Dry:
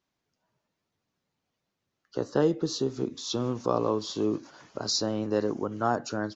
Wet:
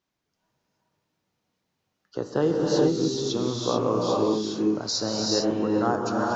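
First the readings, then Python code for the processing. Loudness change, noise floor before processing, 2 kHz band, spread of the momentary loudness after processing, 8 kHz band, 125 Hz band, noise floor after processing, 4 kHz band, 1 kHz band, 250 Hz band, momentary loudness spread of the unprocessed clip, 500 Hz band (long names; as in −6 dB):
+4.5 dB, −83 dBFS, +3.0 dB, 4 LU, can't be measured, +3.5 dB, −80 dBFS, +4.0 dB, +3.5 dB, +5.5 dB, 9 LU, +4.5 dB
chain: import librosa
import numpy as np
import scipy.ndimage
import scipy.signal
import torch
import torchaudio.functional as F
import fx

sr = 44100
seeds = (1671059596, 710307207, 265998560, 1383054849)

y = fx.rev_gated(x, sr, seeds[0], gate_ms=460, shape='rising', drr_db=-2.0)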